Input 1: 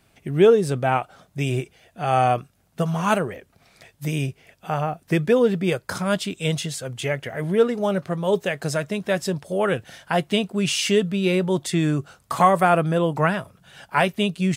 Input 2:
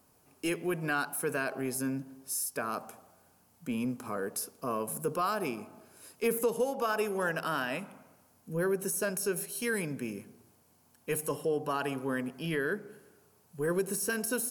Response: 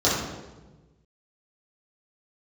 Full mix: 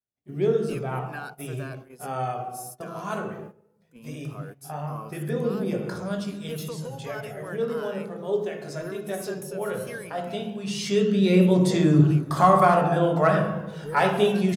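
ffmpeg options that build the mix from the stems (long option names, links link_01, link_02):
-filter_complex "[0:a]agate=range=-18dB:threshold=-50dB:ratio=16:detection=peak,asoftclip=type=hard:threshold=-6.5dB,volume=-1.5dB,afade=type=in:start_time=10.67:duration=0.52:silence=0.334965,asplit=3[link_01][link_02][link_03];[link_02]volume=-15.5dB[link_04];[1:a]adelay=250,volume=-3dB[link_05];[link_03]apad=whole_len=650670[link_06];[link_05][link_06]sidechaincompress=threshold=-30dB:ratio=8:attack=16:release=175[link_07];[2:a]atrim=start_sample=2205[link_08];[link_04][link_08]afir=irnorm=-1:irlink=0[link_09];[link_01][link_07][link_09]amix=inputs=3:normalize=0,flanger=delay=0:depth=3:regen=55:speed=0.17:shape=triangular,agate=range=-14dB:threshold=-40dB:ratio=16:detection=peak"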